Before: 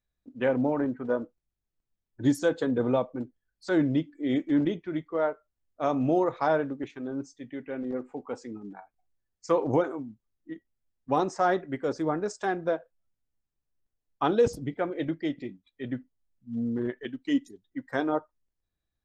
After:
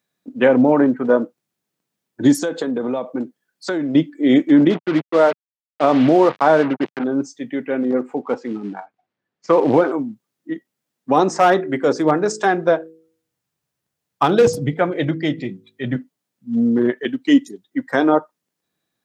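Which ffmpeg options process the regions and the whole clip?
ffmpeg -i in.wav -filter_complex "[0:a]asettb=1/sr,asplit=3[link_01][link_02][link_03];[link_01]atrim=end=2.334[link_04];[link_02]atrim=start=2.33:end=3.95,asetpts=PTS-STARTPTS,afade=type=in:duration=0.004:curve=qsin,afade=type=out:start_time=1.616:duration=0.004:curve=qsin,equalizer=frequency=110:width=1.9:gain=-7,acompressor=threshold=-31dB:ratio=16:attack=3.2:release=140:knee=1:detection=peak[link_05];[link_03]atrim=start=3.946[link_06];[link_04][link_05]acrossfade=duration=0.004:curve1=hsin:curve2=qsin[link_07];[link_07][link_06]acrossfade=duration=0.004:curve1=qsin:curve2=hsin,asettb=1/sr,asplit=3[link_08][link_09][link_10];[link_08]atrim=end=4.704[link_11];[link_09]atrim=start=4.7:end=7.04,asetpts=PTS-STARTPTS,afade=type=in:duration=0.004:curve=qsin,afade=type=out:start_time=2.336:duration=0.004:curve=qsin,agate=range=-33dB:threshold=-51dB:ratio=3:release=100:detection=peak,acrusher=bits=5:mix=0:aa=0.5,lowpass=3400[link_12];[link_10]atrim=start=7.036[link_13];[link_11][link_12]acrossfade=duration=0.004:curve1=hsin:curve2=qsin[link_14];[link_14][link_13]acrossfade=duration=0.004:curve1=qsin:curve2=hsin,asettb=1/sr,asplit=3[link_15][link_16][link_17];[link_15]atrim=end=8.224[link_18];[link_16]atrim=start=8.22:end=9.92,asetpts=PTS-STARTPTS,afade=type=in:duration=0.004:curve=qsin,afade=type=out:start_time=1.696:duration=0.004:curve=qsin,acrusher=bits=5:mode=log:mix=0:aa=0.000001,lowpass=2800[link_19];[link_17]atrim=start=9.916[link_20];[link_18][link_19]acrossfade=duration=0.004:curve1=hsin:curve2=qsin[link_21];[link_21][link_20]acrossfade=duration=0.004:curve1=qsin:curve2=hsin,asettb=1/sr,asplit=3[link_22][link_23][link_24];[link_22]atrim=end=11.274[link_25];[link_23]atrim=start=11.27:end=15.96,asetpts=PTS-STARTPTS,afade=type=in:duration=0.004:curve=qsin,afade=type=out:start_time=4.686:duration=0.004:curve=qsin,asubboost=boost=9:cutoff=100,asoftclip=type=hard:threshold=-18.5dB,bandreject=frequency=53.75:width_type=h:width=4,bandreject=frequency=107.5:width_type=h:width=4,bandreject=frequency=161.25:width_type=h:width=4,bandreject=frequency=215:width_type=h:width=4,bandreject=frequency=268.75:width_type=h:width=4,bandreject=frequency=322.5:width_type=h:width=4,bandreject=frequency=376.25:width_type=h:width=4,bandreject=frequency=430:width_type=h:width=4,bandreject=frequency=483.75:width_type=h:width=4[link_26];[link_24]atrim=start=15.956[link_27];[link_25][link_26]acrossfade=duration=0.004:curve1=hsin:curve2=qsin[link_28];[link_28][link_27]acrossfade=duration=0.004:curve1=qsin:curve2=hsin,highpass=frequency=150:width=0.5412,highpass=frequency=150:width=1.3066,alimiter=level_in=16.5dB:limit=-1dB:release=50:level=0:latency=1,volume=-3dB" out.wav

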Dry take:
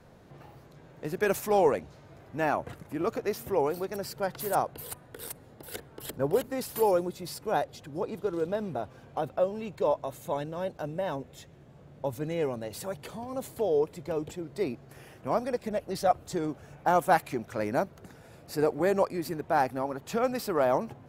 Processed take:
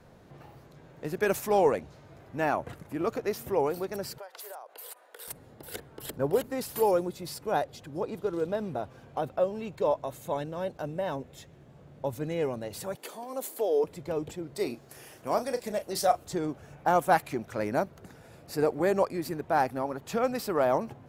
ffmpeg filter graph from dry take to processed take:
ffmpeg -i in.wav -filter_complex "[0:a]asettb=1/sr,asplit=3[link_01][link_02][link_03];[link_01]atrim=end=4.184[link_04];[link_02]atrim=start=4.18:end=5.28,asetpts=PTS-STARTPTS,afade=type=in:duration=0.004:curve=qsin,afade=type=out:start_time=1.096:duration=0.004:curve=qsin,highpass=frequency=500:width=0.5412,highpass=frequency=500:width=1.3066,acompressor=threshold=-39dB:ratio=16:attack=3.2:release=140:knee=1:detection=peak[link_05];[link_03]atrim=start=5.276[link_06];[link_04][link_05]acrossfade=duration=0.004:curve1=hsin:curve2=qsin[link_07];[link_07][link_06]acrossfade=duration=0.004:curve1=qsin:curve2=hsin,asettb=1/sr,asplit=3[link_08][link_09][link_10];[link_08]atrim=end=12.954[link_11];[link_09]atrim=start=12.95:end=13.84,asetpts=PTS-STARTPTS,afade=type=in:duration=0.004:curve=qsin,afade=type=out:start_time=0.886:duration=0.004:curve=qsin,highpass=frequency=280:width=0.5412,highpass=frequency=280:width=1.3066,highshelf=frequency=8200:gain=11[link_12];[link_10]atrim=start=13.836[link_13];[link_11][link_12]acrossfade=duration=0.004:curve1=hsin:curve2=qsin[link_14];[link_14][link_13]acrossfade=duration=0.004:curve1=qsin:curve2=hsin,asettb=1/sr,asplit=3[link_15][link_16][link_17];[link_15]atrim=end=14.554[link_18];[link_16]atrim=start=14.55:end=16.25,asetpts=PTS-STARTPTS,afade=type=in:duration=0.004:curve=qsin,afade=type=out:start_time=1.696:duration=0.004:curve=qsin,bass=frequency=250:gain=-6,treble=frequency=4000:gain=9,asplit=2[link_19][link_20];[link_20]adelay=34,volume=-11dB[link_21];[link_19][link_21]amix=inputs=2:normalize=0,atrim=end_sample=74970[link_22];[link_17]atrim=start=16.246[link_23];[link_18][link_22]acrossfade=duration=0.004:curve1=hsin:curve2=qsin[link_24];[link_24][link_23]acrossfade=duration=0.004:curve1=qsin:curve2=hsin" out.wav

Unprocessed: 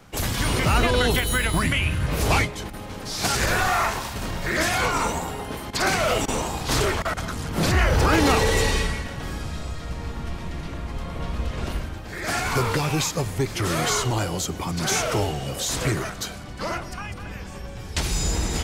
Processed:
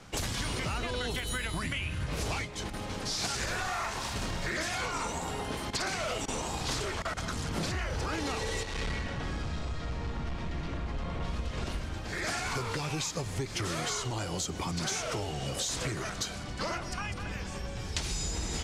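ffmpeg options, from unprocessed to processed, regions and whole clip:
ffmpeg -i in.wav -filter_complex "[0:a]asettb=1/sr,asplit=3[link_01][link_02][link_03];[link_01]atrim=end=8.634[link_04];[link_02]atrim=start=8.63:end=11.25,asetpts=PTS-STARTPTS,afade=type=in:duration=0.004:curve=qsin,afade=type=out:start_time=2.616:duration=0.004:curve=qsin,aemphasis=mode=reproduction:type=50fm,asoftclip=type=hard:threshold=-25.5dB[link_05];[link_03]atrim=start=11.246[link_06];[link_04][link_05]acrossfade=duration=0.004:curve1=hsin:curve2=qsin[link_07];[link_07][link_06]acrossfade=duration=0.004:curve1=qsin:curve2=hsin,lowpass=7200,highshelf=frequency=4300:gain=8,acompressor=threshold=-28dB:ratio=10,volume=-2dB" out.wav

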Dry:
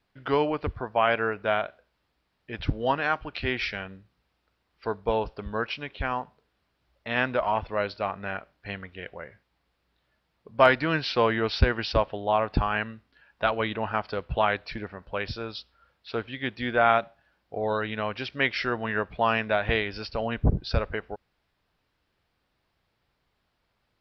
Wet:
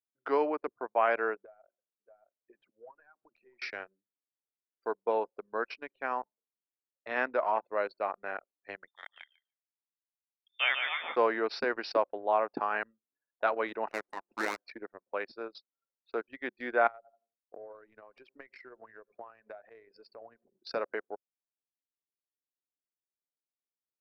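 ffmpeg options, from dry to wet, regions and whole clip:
ffmpeg -i in.wav -filter_complex "[0:a]asettb=1/sr,asplit=3[link_01][link_02][link_03];[link_01]atrim=end=1.384[link_04];[link_02]atrim=start=1.38:end=3.62,asetpts=PTS-STARTPTS,afade=type=in:duration=0.004:curve=qsin,afade=type=out:start_time=2.236:duration=0.004:curve=qsin,aecho=1:1:624:0.168,atrim=end_sample=98784,acompressor=threshold=-39dB:ratio=8:attack=3.2:release=140:knee=1:detection=peak[link_05];[link_03]atrim=start=3.616[link_06];[link_04][link_05]acrossfade=duration=0.004:curve1=hsin:curve2=qsin[link_07];[link_07][link_06]acrossfade=duration=0.004:curve1=qsin:curve2=hsin,asettb=1/sr,asplit=3[link_08][link_09][link_10];[link_08]atrim=end=8.874[link_11];[link_09]atrim=start=8.87:end=11.16,asetpts=PTS-STARTPTS,afade=type=in:duration=0.004:curve=qsin,afade=type=out:start_time=2.286:duration=0.004:curve=qsin,aecho=1:1:146|292|438|584:0.501|0.155|0.0482|0.0149,atrim=end_sample=100989,lowpass=frequency=3100:width_type=q:width=0.5098,lowpass=frequency=3100:width_type=q:width=0.6013,lowpass=frequency=3100:width_type=q:width=0.9,lowpass=frequency=3100:width_type=q:width=2.563,afreqshift=-3700[link_12];[link_10]atrim=start=11.156[link_13];[link_11][link_12]acrossfade=duration=0.004:curve1=hsin:curve2=qsin[link_14];[link_14][link_13]acrossfade=duration=0.004:curve1=qsin:curve2=hsin,asettb=1/sr,asplit=3[link_15][link_16][link_17];[link_15]atrim=end=13.884[link_18];[link_16]atrim=start=13.88:end=14.58,asetpts=PTS-STARTPTS,afade=type=in:duration=0.004:curve=qsin,afade=type=out:start_time=0.696:duration=0.004:curve=qsin,equalizer=frequency=87:width=0.91:gain=-11.5,bandreject=frequency=177.2:width_type=h:width=4,bandreject=frequency=354.4:width_type=h:width=4,bandreject=frequency=531.6:width_type=h:width=4,bandreject=frequency=708.8:width_type=h:width=4,bandreject=frequency=886:width_type=h:width=4,aeval=exprs='abs(val(0))':channel_layout=same[link_19];[link_17]atrim=start=14.576[link_20];[link_18][link_19]acrossfade=duration=0.004:curve1=hsin:curve2=qsin[link_21];[link_21][link_20]acrossfade=duration=0.004:curve1=qsin:curve2=hsin,asettb=1/sr,asplit=3[link_22][link_23][link_24];[link_22]atrim=end=16.874[link_25];[link_23]atrim=start=16.87:end=20.6,asetpts=PTS-STARTPTS,afade=type=in:duration=0.004:curve=qsin,afade=type=out:start_time=3.726:duration=0.004:curve=qsin,acrusher=bits=7:mix=0:aa=0.5,asplit=2[link_26][link_27];[link_27]adelay=87,lowpass=frequency=1200:poles=1,volume=-20.5dB,asplit=2[link_28][link_29];[link_29]adelay=87,lowpass=frequency=1200:poles=1,volume=0.54,asplit=2[link_30][link_31];[link_31]adelay=87,lowpass=frequency=1200:poles=1,volume=0.54,asplit=2[link_32][link_33];[link_33]adelay=87,lowpass=frequency=1200:poles=1,volume=0.54[link_34];[link_26][link_28][link_30][link_32][link_34]amix=inputs=5:normalize=0,atrim=end_sample=164493,acompressor=threshold=-35dB:ratio=8:attack=3.2:release=140:knee=1:detection=peak[link_35];[link_24]atrim=start=20.596[link_36];[link_25][link_35]acrossfade=duration=0.004:curve1=hsin:curve2=qsin[link_37];[link_37][link_36]acrossfade=duration=0.004:curve1=qsin:curve2=hsin,highpass=frequency=300:width=0.5412,highpass=frequency=300:width=1.3066,anlmdn=3.98,equalizer=frequency=3200:width_type=o:width=0.56:gain=-15,volume=-3dB" out.wav

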